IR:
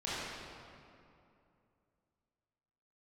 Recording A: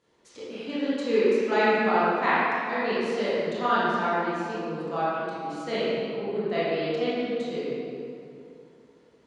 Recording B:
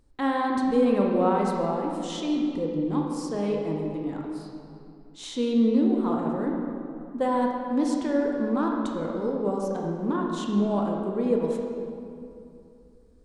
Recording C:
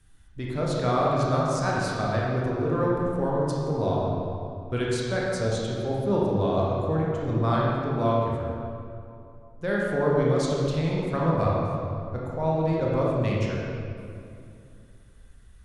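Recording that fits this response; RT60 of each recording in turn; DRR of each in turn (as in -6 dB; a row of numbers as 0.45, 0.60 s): A; 2.6, 2.6, 2.6 s; -11.0, -0.5, -5.0 dB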